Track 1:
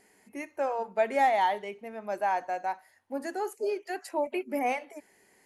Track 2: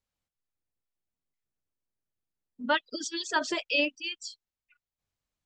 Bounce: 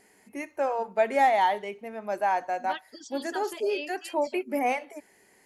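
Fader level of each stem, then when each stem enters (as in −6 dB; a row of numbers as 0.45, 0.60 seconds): +2.5, −10.5 decibels; 0.00, 0.00 seconds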